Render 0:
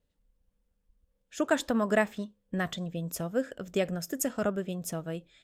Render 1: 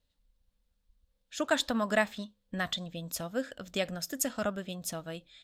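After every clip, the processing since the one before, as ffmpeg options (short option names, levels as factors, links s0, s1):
-af "equalizer=f=160:t=o:w=0.67:g=-6,equalizer=f=400:t=o:w=0.67:g=-9,equalizer=f=4000:t=o:w=0.67:g=9"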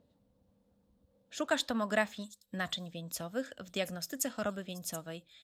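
-filter_complex "[0:a]highpass=63,acrossover=split=100|820|5900[s0][s1][s2][s3];[s1]acompressor=mode=upward:threshold=0.00316:ratio=2.5[s4];[s3]aecho=1:1:729:0.355[s5];[s0][s4][s2][s5]amix=inputs=4:normalize=0,volume=0.708"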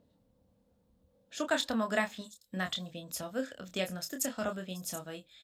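-filter_complex "[0:a]asplit=2[s0][s1];[s1]adelay=27,volume=0.501[s2];[s0][s2]amix=inputs=2:normalize=0"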